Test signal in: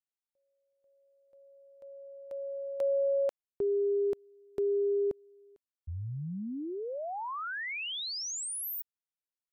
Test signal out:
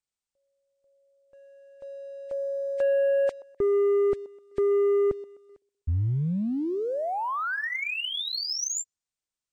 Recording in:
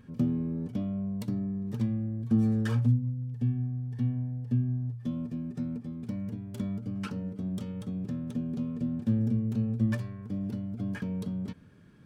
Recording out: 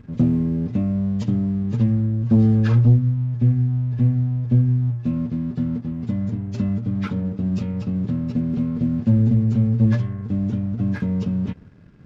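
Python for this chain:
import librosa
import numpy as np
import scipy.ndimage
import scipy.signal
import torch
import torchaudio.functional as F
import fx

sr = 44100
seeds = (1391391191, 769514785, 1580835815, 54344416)

p1 = fx.freq_compress(x, sr, knee_hz=1600.0, ratio=1.5)
p2 = fx.low_shelf(p1, sr, hz=120.0, db=10.0)
p3 = p2 + fx.echo_wet_bandpass(p2, sr, ms=127, feedback_pct=38, hz=590.0, wet_db=-20.5, dry=0)
p4 = fx.leveller(p3, sr, passes=1)
y = p4 * librosa.db_to_amplitude(4.0)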